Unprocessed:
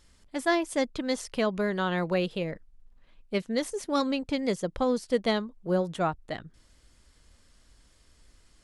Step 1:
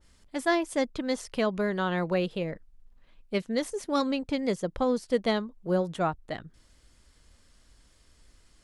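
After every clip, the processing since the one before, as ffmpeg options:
ffmpeg -i in.wav -af "adynamicequalizer=threshold=0.00631:dfrequency=2100:dqfactor=0.7:tfrequency=2100:tqfactor=0.7:attack=5:release=100:ratio=0.375:range=1.5:mode=cutabove:tftype=highshelf" out.wav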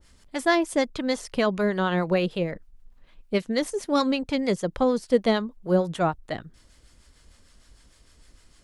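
ffmpeg -i in.wav -filter_complex "[0:a]acrossover=split=710[link_01][link_02];[link_01]aeval=exprs='val(0)*(1-0.5/2+0.5/2*cos(2*PI*6.6*n/s))':channel_layout=same[link_03];[link_02]aeval=exprs='val(0)*(1-0.5/2-0.5/2*cos(2*PI*6.6*n/s))':channel_layout=same[link_04];[link_03][link_04]amix=inputs=2:normalize=0,volume=6.5dB" out.wav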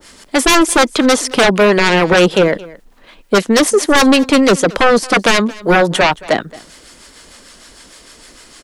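ffmpeg -i in.wav -filter_complex "[0:a]acrossover=split=210[link_01][link_02];[link_02]aeval=exprs='0.376*sin(PI/2*5.01*val(0)/0.376)':channel_layout=same[link_03];[link_01][link_03]amix=inputs=2:normalize=0,aecho=1:1:222:0.0891,volume=2.5dB" out.wav

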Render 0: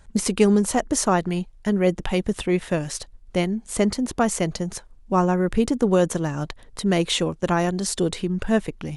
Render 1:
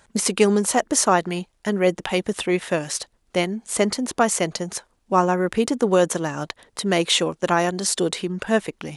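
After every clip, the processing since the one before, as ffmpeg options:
ffmpeg -i in.wav -af "highpass=frequency=430:poles=1,volume=4.5dB" out.wav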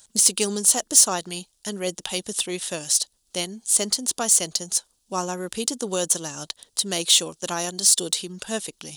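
ffmpeg -i in.wav -af "aexciter=amount=4:drive=9.1:freq=3100,volume=-9.5dB" out.wav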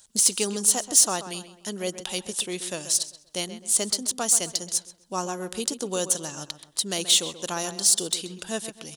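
ffmpeg -i in.wav -filter_complex "[0:a]asplit=2[link_01][link_02];[link_02]adelay=131,lowpass=frequency=2800:poles=1,volume=-11.5dB,asplit=2[link_03][link_04];[link_04]adelay=131,lowpass=frequency=2800:poles=1,volume=0.4,asplit=2[link_05][link_06];[link_06]adelay=131,lowpass=frequency=2800:poles=1,volume=0.4,asplit=2[link_07][link_08];[link_08]adelay=131,lowpass=frequency=2800:poles=1,volume=0.4[link_09];[link_01][link_03][link_05][link_07][link_09]amix=inputs=5:normalize=0,volume=-2.5dB" out.wav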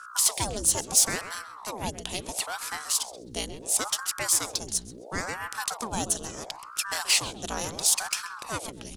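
ffmpeg -i in.wav -af "aeval=exprs='val(0)+0.01*(sin(2*PI*60*n/s)+sin(2*PI*2*60*n/s)/2+sin(2*PI*3*60*n/s)/3+sin(2*PI*4*60*n/s)/4+sin(2*PI*5*60*n/s)/5)':channel_layout=same,aeval=exprs='val(0)*sin(2*PI*750*n/s+750*0.85/0.73*sin(2*PI*0.73*n/s))':channel_layout=same" out.wav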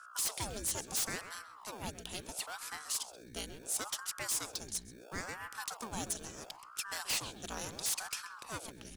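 ffmpeg -i in.wav -filter_complex "[0:a]acrossover=split=660|7300[link_01][link_02][link_03];[link_01]acrusher=samples=22:mix=1:aa=0.000001[link_04];[link_04][link_02][link_03]amix=inputs=3:normalize=0,aeval=exprs='0.133*(abs(mod(val(0)/0.133+3,4)-2)-1)':channel_layout=same,volume=-9dB" out.wav

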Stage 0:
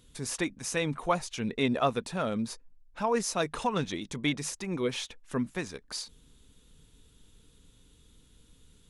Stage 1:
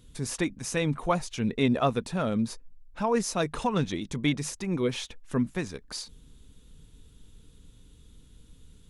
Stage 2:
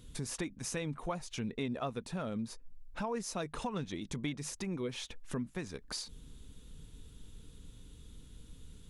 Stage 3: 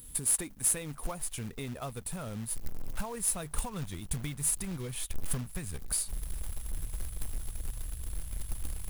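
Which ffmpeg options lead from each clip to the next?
ffmpeg -i in.wav -af "lowshelf=frequency=280:gain=7.5" out.wav
ffmpeg -i in.wav -af "acompressor=threshold=-39dB:ratio=3,volume=1dB" out.wav
ffmpeg -i in.wav -af "aexciter=amount=13:drive=6.7:freq=8500,asubboost=boost=9.5:cutoff=96,acrusher=bits=3:mode=log:mix=0:aa=0.000001,volume=-2dB" out.wav

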